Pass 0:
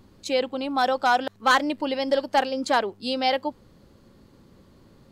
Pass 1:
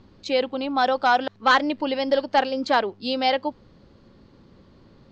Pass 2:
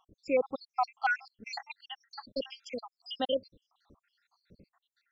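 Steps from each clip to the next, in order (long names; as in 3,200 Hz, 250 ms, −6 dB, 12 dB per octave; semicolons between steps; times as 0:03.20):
low-pass filter 5,400 Hz 24 dB per octave; level +1.5 dB
time-frequency cells dropped at random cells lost 82%; level −4.5 dB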